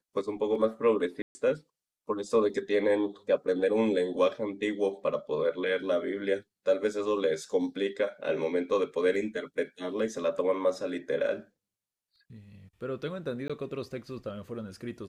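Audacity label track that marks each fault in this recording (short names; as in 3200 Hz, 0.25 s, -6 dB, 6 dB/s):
1.220000	1.350000	gap 0.13 s
13.480000	13.500000	gap 16 ms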